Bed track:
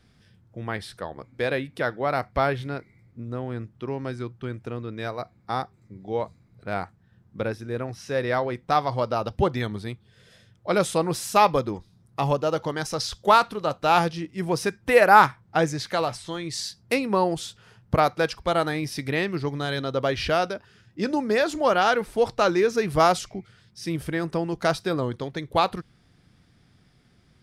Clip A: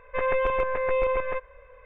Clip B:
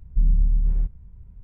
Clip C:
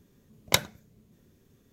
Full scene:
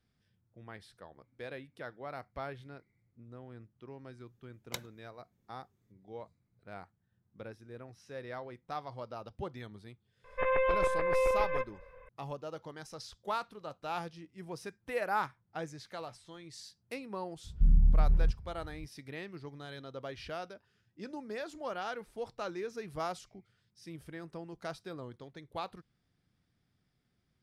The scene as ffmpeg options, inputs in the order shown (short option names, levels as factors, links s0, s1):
-filter_complex "[0:a]volume=0.126[s0];[2:a]highpass=40[s1];[3:a]atrim=end=1.72,asetpts=PTS-STARTPTS,volume=0.133,afade=t=in:d=0.004:c=hsin,afade=t=out:st=1.716:d=0.004:c=hsin,adelay=4200[s2];[1:a]atrim=end=1.85,asetpts=PTS-STARTPTS,volume=0.631,afade=t=in:d=0.004:c=hsin,afade=t=out:st=1.846:d=0.004:c=hsin,adelay=10240[s3];[s1]atrim=end=1.43,asetpts=PTS-STARTPTS,volume=0.891,afade=t=in:d=0.004:c=hsin,afade=t=out:st=1.426:d=0.004:c=hsin,adelay=17440[s4];[s0][s2][s3][s4]amix=inputs=4:normalize=0"